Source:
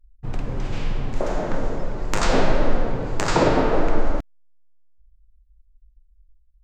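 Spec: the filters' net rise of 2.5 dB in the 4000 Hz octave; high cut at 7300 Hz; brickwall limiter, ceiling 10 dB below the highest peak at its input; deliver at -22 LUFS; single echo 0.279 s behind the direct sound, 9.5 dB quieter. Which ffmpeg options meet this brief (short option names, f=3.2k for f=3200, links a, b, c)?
-af "lowpass=7.3k,equalizer=f=4k:t=o:g=3.5,alimiter=limit=-11dB:level=0:latency=1,aecho=1:1:279:0.335,volume=3.5dB"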